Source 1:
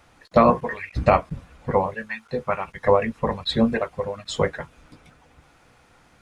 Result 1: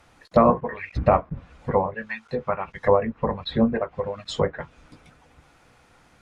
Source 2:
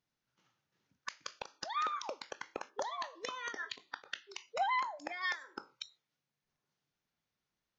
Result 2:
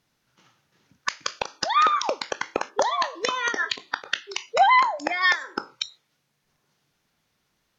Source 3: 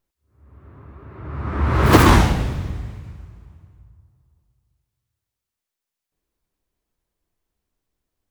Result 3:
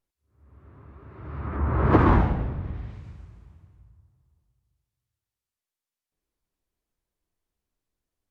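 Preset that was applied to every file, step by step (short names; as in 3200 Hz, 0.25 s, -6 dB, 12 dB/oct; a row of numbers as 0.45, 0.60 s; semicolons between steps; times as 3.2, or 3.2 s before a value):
treble ducked by the level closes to 1400 Hz, closed at -20 dBFS; match loudness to -24 LUFS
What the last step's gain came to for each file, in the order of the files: -0.5, +16.0, -5.5 dB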